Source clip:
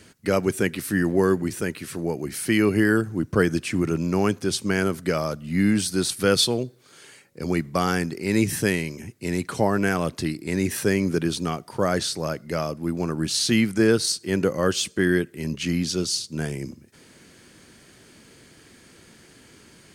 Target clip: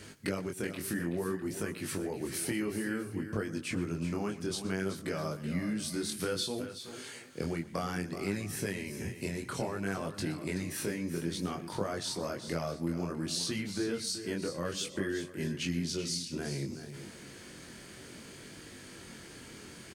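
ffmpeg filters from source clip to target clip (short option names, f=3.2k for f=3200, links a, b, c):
-af "acompressor=threshold=-34dB:ratio=6,flanger=delay=19.5:depth=5:speed=0.59,aecho=1:1:121|377|418|652:0.126|0.282|0.1|0.1,volume=4.5dB"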